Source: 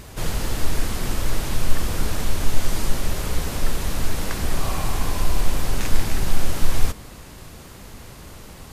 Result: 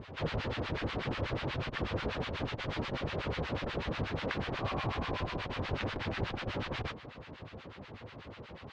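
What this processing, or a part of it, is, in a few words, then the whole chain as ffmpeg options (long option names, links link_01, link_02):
guitar amplifier with harmonic tremolo: -filter_complex "[0:a]acrossover=split=1000[link_01][link_02];[link_01]aeval=exprs='val(0)*(1-1/2+1/2*cos(2*PI*8.2*n/s))':channel_layout=same[link_03];[link_02]aeval=exprs='val(0)*(1-1/2-1/2*cos(2*PI*8.2*n/s))':channel_layout=same[link_04];[link_03][link_04]amix=inputs=2:normalize=0,asoftclip=type=tanh:threshold=-10dB,highpass=100,equalizer=frequency=100:width_type=q:width=4:gain=3,equalizer=frequency=190:width_type=q:width=4:gain=-3,equalizer=frequency=520:width_type=q:width=4:gain=4,lowpass=frequency=3600:width=0.5412,lowpass=frequency=3600:width=1.3066"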